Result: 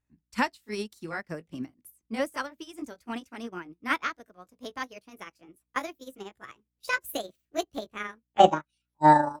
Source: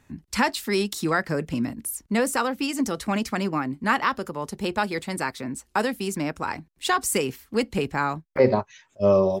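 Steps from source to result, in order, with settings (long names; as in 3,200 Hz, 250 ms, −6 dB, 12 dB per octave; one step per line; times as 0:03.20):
pitch glide at a constant tempo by +7.5 semitones starting unshifted
mains hum 60 Hz, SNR 31 dB
expander for the loud parts 2.5 to 1, over −36 dBFS
level +3.5 dB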